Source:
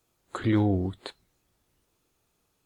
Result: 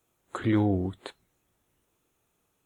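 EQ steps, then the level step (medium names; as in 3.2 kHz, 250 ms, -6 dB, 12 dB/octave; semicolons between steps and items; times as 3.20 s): bass shelf 69 Hz -6 dB; peaking EQ 4.7 kHz -10.5 dB 0.41 oct; 0.0 dB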